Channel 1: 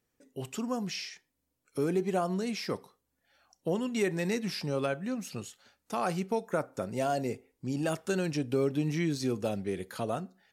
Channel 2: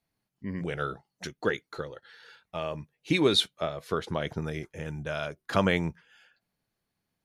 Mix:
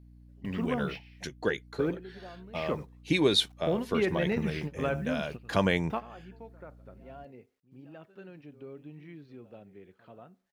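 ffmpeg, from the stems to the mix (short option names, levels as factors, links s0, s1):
-filter_complex "[0:a]lowpass=f=3100:w=0.5412,lowpass=f=3100:w=1.3066,acrusher=bits=10:mix=0:aa=0.000001,volume=1.12,asplit=2[s0][s1];[s1]volume=0.119[s2];[1:a]bandreject=f=1300:w=6.4,aeval=exprs='val(0)+0.00282*(sin(2*PI*60*n/s)+sin(2*PI*2*60*n/s)/2+sin(2*PI*3*60*n/s)/3+sin(2*PI*4*60*n/s)/4+sin(2*PI*5*60*n/s)/5)':c=same,volume=0.891,asplit=2[s3][s4];[s4]apad=whole_len=464101[s5];[s0][s5]sidechaingate=range=0.0224:threshold=0.01:ratio=16:detection=peak[s6];[s2]aecho=0:1:86:1[s7];[s6][s3][s7]amix=inputs=3:normalize=0"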